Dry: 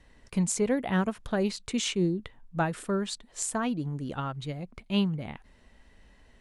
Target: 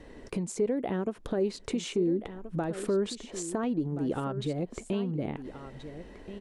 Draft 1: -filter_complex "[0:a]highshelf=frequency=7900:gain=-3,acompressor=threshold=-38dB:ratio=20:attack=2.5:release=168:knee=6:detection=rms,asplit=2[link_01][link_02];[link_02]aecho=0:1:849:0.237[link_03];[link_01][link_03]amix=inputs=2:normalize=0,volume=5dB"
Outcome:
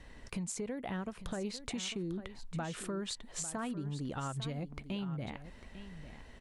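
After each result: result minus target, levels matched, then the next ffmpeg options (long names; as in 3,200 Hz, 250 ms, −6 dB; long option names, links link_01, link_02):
echo 529 ms early; 500 Hz band −5.0 dB
-filter_complex "[0:a]highshelf=frequency=7900:gain=-3,acompressor=threshold=-38dB:ratio=20:attack=2.5:release=168:knee=6:detection=rms,asplit=2[link_01][link_02];[link_02]aecho=0:1:1378:0.237[link_03];[link_01][link_03]amix=inputs=2:normalize=0,volume=5dB"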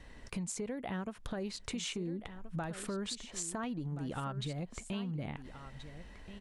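500 Hz band −5.0 dB
-filter_complex "[0:a]highshelf=frequency=7900:gain=-3,acompressor=threshold=-38dB:ratio=20:attack=2.5:release=168:knee=6:detection=rms,equalizer=frequency=380:width_type=o:width=1.6:gain=14.5,asplit=2[link_01][link_02];[link_02]aecho=0:1:1378:0.237[link_03];[link_01][link_03]amix=inputs=2:normalize=0,volume=5dB"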